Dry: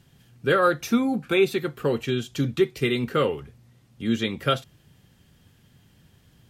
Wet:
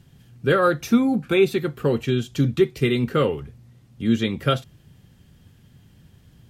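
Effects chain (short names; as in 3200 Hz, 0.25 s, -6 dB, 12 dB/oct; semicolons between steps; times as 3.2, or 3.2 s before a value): low shelf 300 Hz +7 dB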